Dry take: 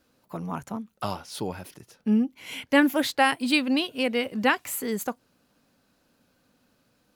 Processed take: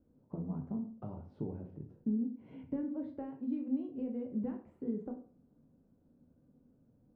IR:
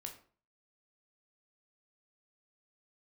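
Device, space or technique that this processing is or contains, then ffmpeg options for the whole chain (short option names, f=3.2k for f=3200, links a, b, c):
television next door: -filter_complex "[0:a]acompressor=threshold=-35dB:ratio=5,lowpass=330[a];[1:a]atrim=start_sample=2205[b];[a][b]afir=irnorm=-1:irlink=0,volume=7dB"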